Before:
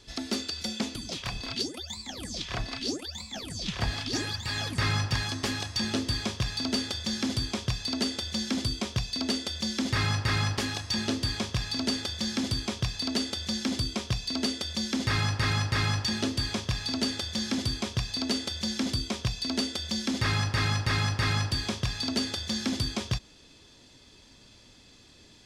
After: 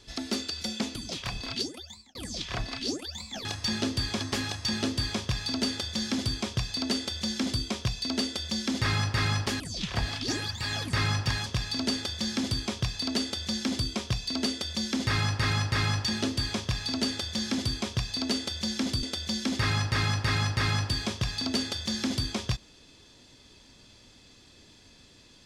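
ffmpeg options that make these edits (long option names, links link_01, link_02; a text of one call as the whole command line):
ffmpeg -i in.wav -filter_complex "[0:a]asplit=7[link_01][link_02][link_03][link_04][link_05][link_06][link_07];[link_01]atrim=end=2.15,asetpts=PTS-STARTPTS,afade=type=out:start_time=1.58:duration=0.57[link_08];[link_02]atrim=start=2.15:end=3.452,asetpts=PTS-STARTPTS,afade=type=in:duration=0.004:curve=hsin[link_09];[link_03]atrim=start=10.708:end=11.462[link_10];[link_04]atrim=start=5.308:end=10.712[link_11];[link_05]atrim=start=3.448:end=5.312[link_12];[link_06]atrim=start=11.458:end=19.032[link_13];[link_07]atrim=start=19.648[link_14];[link_08][link_09]concat=n=2:v=0:a=1[link_15];[link_15][link_10]acrossfade=duration=0.004:curve1=hsin:curve2=hsin[link_16];[link_16][link_11]acrossfade=duration=0.004:curve1=hsin:curve2=hsin[link_17];[link_17][link_12]acrossfade=duration=0.004:curve1=hsin:curve2=hsin[link_18];[link_18][link_13]acrossfade=duration=0.004:curve1=hsin:curve2=hsin[link_19];[link_19][link_14]acrossfade=duration=0.004:curve1=hsin:curve2=hsin" out.wav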